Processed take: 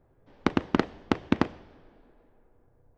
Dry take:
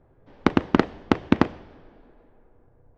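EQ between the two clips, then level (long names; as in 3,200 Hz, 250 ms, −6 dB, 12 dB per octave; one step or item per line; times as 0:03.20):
high-shelf EQ 4,300 Hz +5.5 dB
−5.5 dB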